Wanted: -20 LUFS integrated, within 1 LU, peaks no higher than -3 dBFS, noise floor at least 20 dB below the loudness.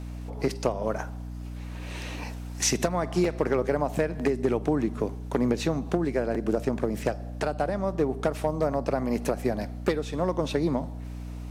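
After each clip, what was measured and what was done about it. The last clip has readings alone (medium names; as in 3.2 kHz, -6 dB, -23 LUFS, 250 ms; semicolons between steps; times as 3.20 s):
hum 60 Hz; highest harmonic 300 Hz; hum level -34 dBFS; loudness -28.0 LUFS; peak level -10.0 dBFS; loudness target -20.0 LUFS
-> hum notches 60/120/180/240/300 Hz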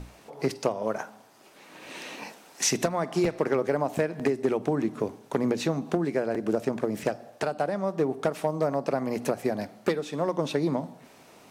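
hum not found; loudness -28.5 LUFS; peak level -10.0 dBFS; loudness target -20.0 LUFS
-> trim +8.5 dB; peak limiter -3 dBFS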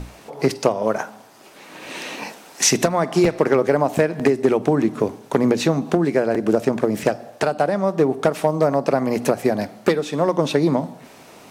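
loudness -20.0 LUFS; peak level -3.0 dBFS; noise floor -46 dBFS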